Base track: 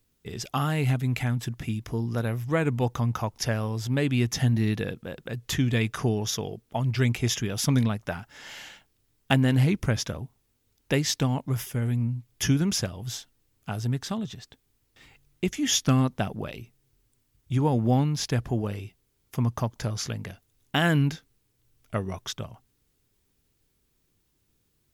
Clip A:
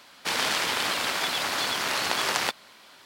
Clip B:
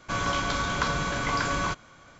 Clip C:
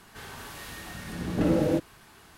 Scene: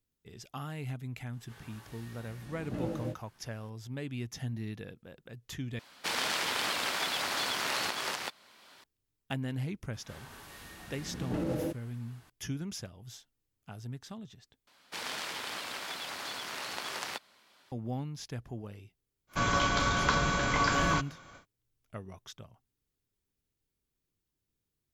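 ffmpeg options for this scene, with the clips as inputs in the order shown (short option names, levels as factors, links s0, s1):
-filter_complex "[3:a]asplit=2[s0][s1];[1:a]asplit=2[s2][s3];[0:a]volume=0.2[s4];[s0]flanger=delay=17.5:depth=2:speed=2[s5];[s2]alimiter=limit=0.266:level=0:latency=1:release=478[s6];[s1]alimiter=limit=0.168:level=0:latency=1:release=71[s7];[s4]asplit=3[s8][s9][s10];[s8]atrim=end=5.794[s11];[s6]atrim=end=3.05,asetpts=PTS-STARTPTS,volume=0.562[s12];[s9]atrim=start=8.836:end=14.674[s13];[s3]atrim=end=3.05,asetpts=PTS-STARTPTS,volume=0.251[s14];[s10]atrim=start=17.716[s15];[s5]atrim=end=2.37,asetpts=PTS-STARTPTS,volume=0.316,afade=t=in:d=0.004:c=hsin,afade=t=out:st=2.366:d=0.004:c=hsin,adelay=1330[s16];[s7]atrim=end=2.37,asetpts=PTS-STARTPTS,volume=0.398,afade=t=in:d=0.004:c=hsin,afade=t=out:st=2.366:d=0.004:c=hsin,adelay=9930[s17];[2:a]atrim=end=2.19,asetpts=PTS-STARTPTS,volume=0.944,afade=t=in:d=0.1,afade=t=out:st=2.09:d=0.1,adelay=19270[s18];[s11][s12]acrossfade=d=0.004:c1=hsin:c2=hsin[s19];[s19][s13]acrossfade=d=0.004:c1=hsin:c2=hsin[s20];[s20][s14]acrossfade=d=0.004:c1=hsin:c2=hsin[s21];[s21][s15]acrossfade=d=0.004:c1=hsin:c2=hsin[s22];[s22][s16][s17][s18]amix=inputs=4:normalize=0"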